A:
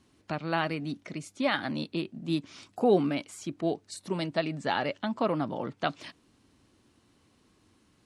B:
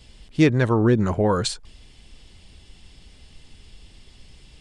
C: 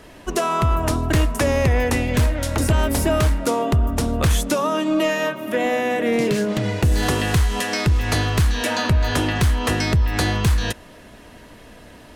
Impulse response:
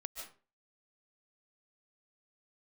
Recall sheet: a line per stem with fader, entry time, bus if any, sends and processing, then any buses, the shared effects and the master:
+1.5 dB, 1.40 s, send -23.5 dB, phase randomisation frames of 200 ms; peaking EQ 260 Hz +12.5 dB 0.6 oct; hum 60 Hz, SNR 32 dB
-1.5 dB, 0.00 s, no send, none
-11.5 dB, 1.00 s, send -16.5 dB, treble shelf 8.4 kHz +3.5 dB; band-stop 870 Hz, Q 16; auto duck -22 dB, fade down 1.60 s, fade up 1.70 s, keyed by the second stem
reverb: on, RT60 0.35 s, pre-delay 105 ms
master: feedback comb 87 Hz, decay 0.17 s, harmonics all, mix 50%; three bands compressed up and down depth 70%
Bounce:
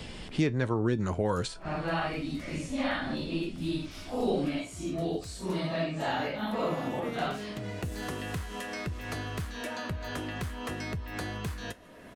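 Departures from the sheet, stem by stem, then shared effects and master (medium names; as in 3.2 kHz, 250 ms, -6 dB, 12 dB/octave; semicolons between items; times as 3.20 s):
stem A: missing peaking EQ 260 Hz +12.5 dB 0.6 oct; stem C -11.5 dB -> -18.5 dB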